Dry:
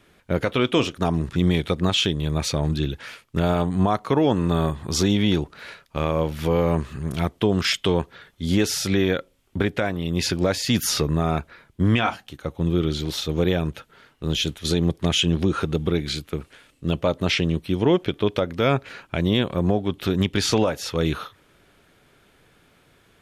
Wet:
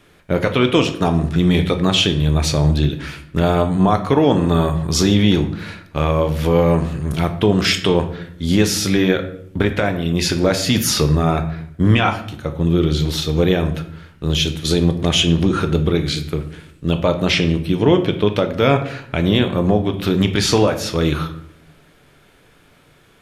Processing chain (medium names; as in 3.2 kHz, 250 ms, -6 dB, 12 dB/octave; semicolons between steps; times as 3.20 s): simulated room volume 130 m³, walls mixed, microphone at 0.41 m; trim +4.5 dB